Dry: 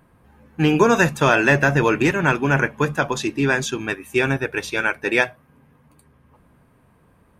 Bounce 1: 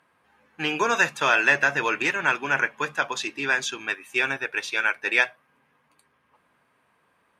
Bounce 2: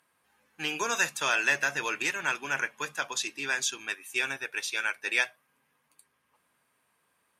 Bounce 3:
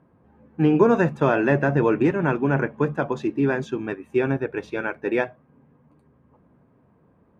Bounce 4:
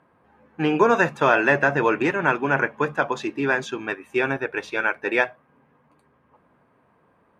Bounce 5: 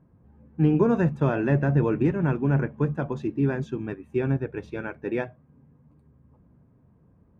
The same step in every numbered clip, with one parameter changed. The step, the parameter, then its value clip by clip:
band-pass filter, frequency: 2.8 kHz, 7.3 kHz, 310 Hz, 850 Hz, 120 Hz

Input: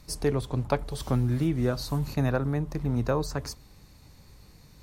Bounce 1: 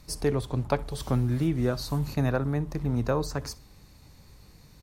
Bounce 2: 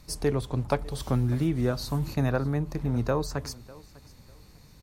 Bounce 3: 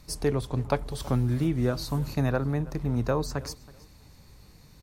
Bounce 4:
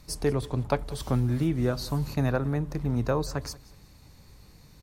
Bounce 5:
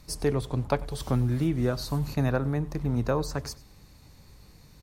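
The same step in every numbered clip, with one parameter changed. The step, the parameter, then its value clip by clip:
feedback delay, time: 62 ms, 599 ms, 324 ms, 183 ms, 96 ms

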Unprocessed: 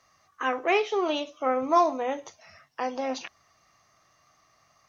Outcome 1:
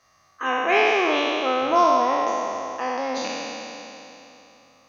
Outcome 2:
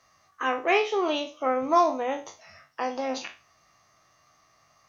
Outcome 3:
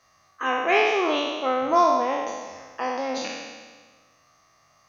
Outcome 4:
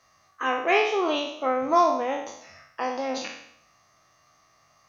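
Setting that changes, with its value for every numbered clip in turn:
spectral sustain, RT60: 3.18 s, 0.31 s, 1.5 s, 0.7 s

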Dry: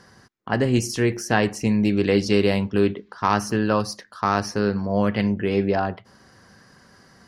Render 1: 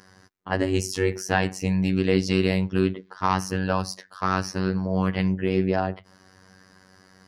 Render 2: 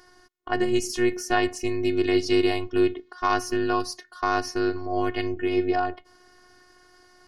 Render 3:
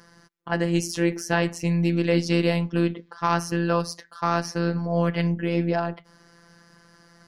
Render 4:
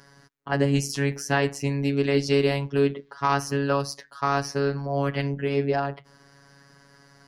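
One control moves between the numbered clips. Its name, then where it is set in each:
robot voice, frequency: 94 Hz, 360 Hz, 170 Hz, 140 Hz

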